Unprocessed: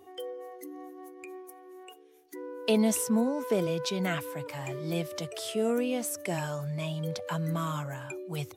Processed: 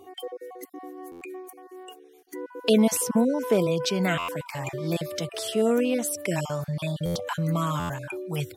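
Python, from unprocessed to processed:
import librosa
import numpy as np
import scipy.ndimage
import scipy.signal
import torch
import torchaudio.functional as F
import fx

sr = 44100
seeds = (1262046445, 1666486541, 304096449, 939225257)

y = fx.spec_dropout(x, sr, seeds[0], share_pct=22)
y = fx.buffer_glitch(y, sr, at_s=(1.11, 4.18, 7.05, 7.79), block=512, repeats=8)
y = F.gain(torch.from_numpy(y), 5.5).numpy()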